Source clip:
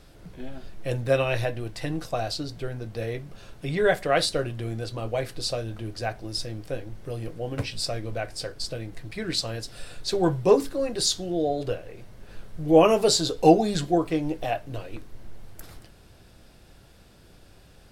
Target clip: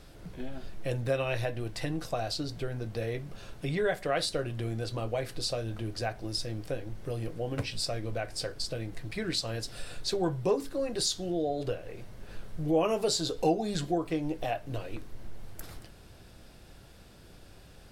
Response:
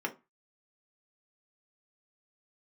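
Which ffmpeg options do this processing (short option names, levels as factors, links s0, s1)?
-af "acompressor=threshold=0.0282:ratio=2"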